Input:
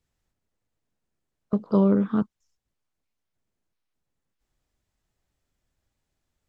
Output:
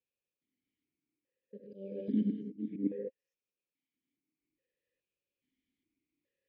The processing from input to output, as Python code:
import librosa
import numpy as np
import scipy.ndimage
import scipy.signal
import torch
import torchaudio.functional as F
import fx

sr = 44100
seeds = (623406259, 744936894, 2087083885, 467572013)

y = fx.reverse_delay(x, sr, ms=479, wet_db=-1.0)
y = fx.level_steps(y, sr, step_db=12, at=(1.6, 2.17))
y = fx.rev_gated(y, sr, seeds[0], gate_ms=230, shape='rising', drr_db=6.5)
y = fx.auto_swell(y, sr, attack_ms=119.0)
y = fx.brickwall_bandstop(y, sr, low_hz=580.0, high_hz=1600.0)
y = fx.vowel_held(y, sr, hz=2.4)
y = F.gain(torch.from_numpy(y), 4.5).numpy()